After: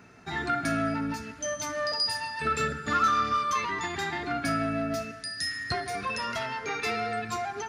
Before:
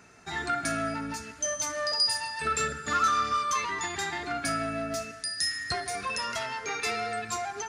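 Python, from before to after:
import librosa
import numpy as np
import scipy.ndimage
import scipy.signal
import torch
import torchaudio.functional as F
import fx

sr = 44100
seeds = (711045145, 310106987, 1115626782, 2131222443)

y = fx.graphic_eq(x, sr, hz=(125, 250, 8000), db=(4, 4, -10))
y = F.gain(torch.from_numpy(y), 1.0).numpy()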